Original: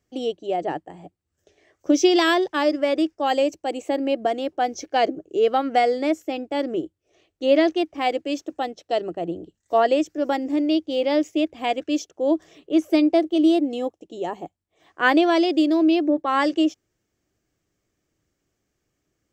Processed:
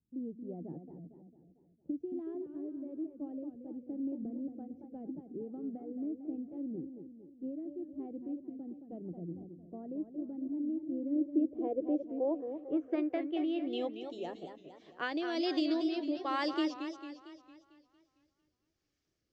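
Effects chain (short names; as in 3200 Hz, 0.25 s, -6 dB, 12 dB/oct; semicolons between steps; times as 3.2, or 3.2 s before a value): compressor, threshold -20 dBFS, peak gain reduction 8.5 dB; low-pass sweep 210 Hz -> 4900 Hz, 10.86–14.14; rotary speaker horn 1.2 Hz; warbling echo 0.226 s, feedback 51%, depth 172 cents, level -8.5 dB; gain -8.5 dB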